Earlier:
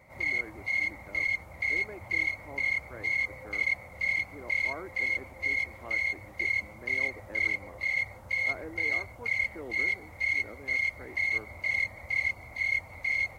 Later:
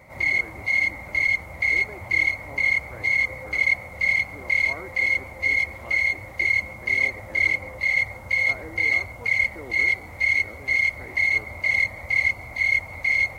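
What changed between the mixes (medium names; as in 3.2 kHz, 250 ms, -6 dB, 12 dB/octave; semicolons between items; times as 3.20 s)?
background +6.5 dB; reverb: on, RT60 1.7 s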